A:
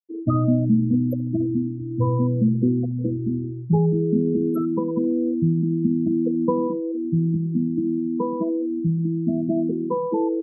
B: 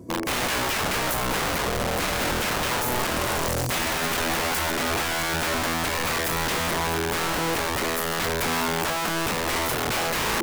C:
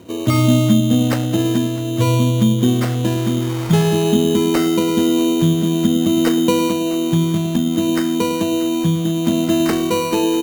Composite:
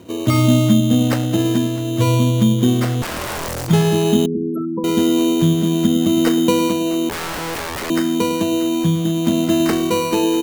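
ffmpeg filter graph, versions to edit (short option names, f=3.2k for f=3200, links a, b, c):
-filter_complex "[1:a]asplit=2[a][b];[2:a]asplit=4[c][d][e][f];[c]atrim=end=3.022[g];[a]atrim=start=3.018:end=3.682[h];[d]atrim=start=3.678:end=4.262[i];[0:a]atrim=start=4.258:end=4.842[j];[e]atrim=start=4.838:end=7.092[k];[b]atrim=start=7.088:end=7.902[l];[f]atrim=start=7.898[m];[g][h]acrossfade=d=0.004:c1=hsin:c2=hsin[n];[n][i]acrossfade=d=0.004:c1=hsin:c2=hsin[o];[o][j]acrossfade=d=0.004:c1=hsin:c2=hsin[p];[p][k]acrossfade=d=0.004:c1=hsin:c2=hsin[q];[q][l]acrossfade=d=0.004:c1=hsin:c2=hsin[r];[r][m]acrossfade=d=0.004:c1=hsin:c2=hsin"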